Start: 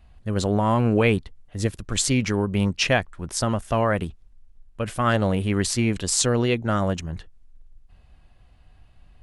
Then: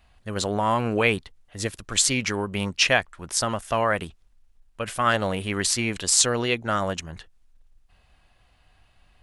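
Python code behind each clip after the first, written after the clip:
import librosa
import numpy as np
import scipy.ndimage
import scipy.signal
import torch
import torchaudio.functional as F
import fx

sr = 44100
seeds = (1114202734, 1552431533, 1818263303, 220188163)

y = fx.low_shelf(x, sr, hz=480.0, db=-12.0)
y = y * librosa.db_to_amplitude(3.5)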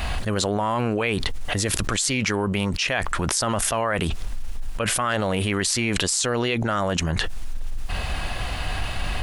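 y = fx.env_flatten(x, sr, amount_pct=100)
y = y * librosa.db_to_amplitude(-7.0)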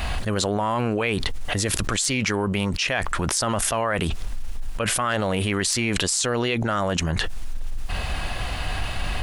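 y = 10.0 ** (-3.0 / 20.0) * np.tanh(x / 10.0 ** (-3.0 / 20.0))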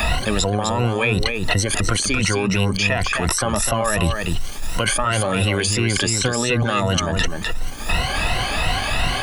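y = fx.spec_ripple(x, sr, per_octave=2.0, drift_hz=2.8, depth_db=18)
y = y + 10.0 ** (-7.0 / 20.0) * np.pad(y, (int(253 * sr / 1000.0), 0))[:len(y)]
y = fx.band_squash(y, sr, depth_pct=70)
y = y * librosa.db_to_amplitude(-1.0)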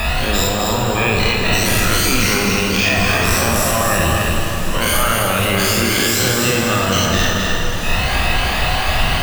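y = fx.spec_dilate(x, sr, span_ms=120)
y = np.repeat(scipy.signal.resample_poly(y, 1, 2), 2)[:len(y)]
y = fx.rev_plate(y, sr, seeds[0], rt60_s=4.8, hf_ratio=0.75, predelay_ms=0, drr_db=-1.0)
y = y * librosa.db_to_amplitude(-4.5)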